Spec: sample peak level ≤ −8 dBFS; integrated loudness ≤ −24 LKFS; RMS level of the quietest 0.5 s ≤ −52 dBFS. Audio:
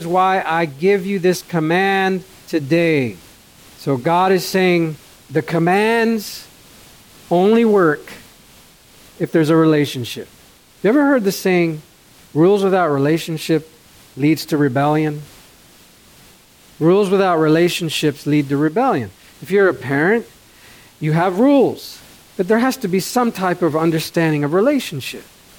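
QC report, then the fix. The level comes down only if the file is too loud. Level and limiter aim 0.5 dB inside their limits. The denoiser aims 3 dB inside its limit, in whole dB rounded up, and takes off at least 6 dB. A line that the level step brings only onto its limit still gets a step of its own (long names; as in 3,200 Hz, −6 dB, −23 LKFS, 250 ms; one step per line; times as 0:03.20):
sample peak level −5.0 dBFS: out of spec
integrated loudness −16.5 LKFS: out of spec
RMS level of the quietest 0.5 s −47 dBFS: out of spec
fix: level −8 dB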